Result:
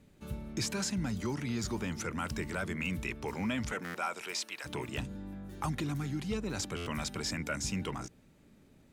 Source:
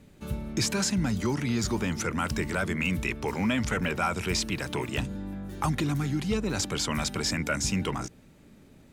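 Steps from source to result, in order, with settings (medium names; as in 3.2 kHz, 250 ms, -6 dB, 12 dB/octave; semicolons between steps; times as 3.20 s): 3.71–4.64 s: high-pass 240 Hz -> 820 Hz 12 dB/octave; buffer glitch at 3.84/6.76 s, samples 512, times 8; trim -7 dB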